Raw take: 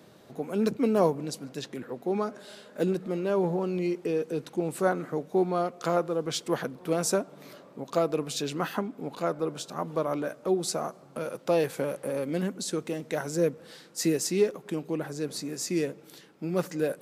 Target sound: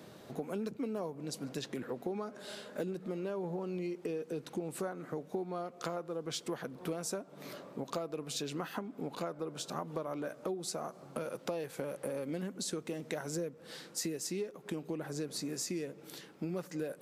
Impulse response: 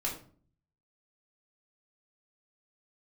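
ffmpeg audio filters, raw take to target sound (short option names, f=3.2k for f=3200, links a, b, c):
-af "acompressor=threshold=-36dB:ratio=10,volume=1.5dB"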